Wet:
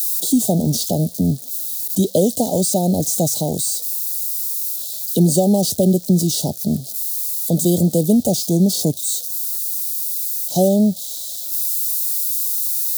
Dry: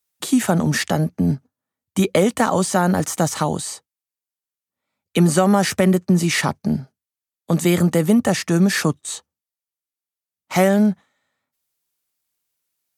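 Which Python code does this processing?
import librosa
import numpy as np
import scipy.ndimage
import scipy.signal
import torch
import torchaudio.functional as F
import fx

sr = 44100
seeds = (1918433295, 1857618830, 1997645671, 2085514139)

y = x + 0.5 * 10.0 ** (-19.0 / 20.0) * np.diff(np.sign(x), prepend=np.sign(x[:1]))
y = scipy.signal.sosfilt(scipy.signal.ellip(3, 1.0, 40, [680.0, 3800.0], 'bandstop', fs=sr, output='sos'), y)
y = y * librosa.db_to_amplitude(1.5)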